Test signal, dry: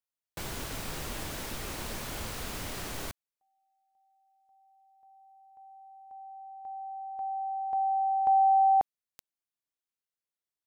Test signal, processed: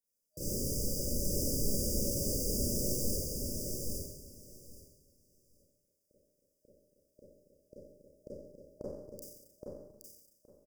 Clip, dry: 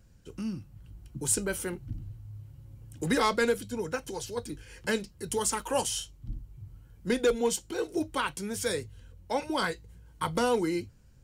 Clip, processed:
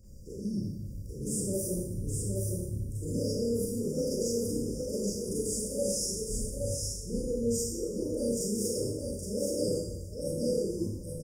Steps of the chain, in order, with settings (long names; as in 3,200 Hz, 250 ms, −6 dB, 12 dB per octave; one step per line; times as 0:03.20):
brick-wall band-stop 620–4,700 Hz
brickwall limiter −24 dBFS
reversed playback
downward compressor, threshold −41 dBFS
reversed playback
repeating echo 820 ms, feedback 16%, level −3.5 dB
four-comb reverb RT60 0.91 s, combs from 30 ms, DRR −8.5 dB
level +2 dB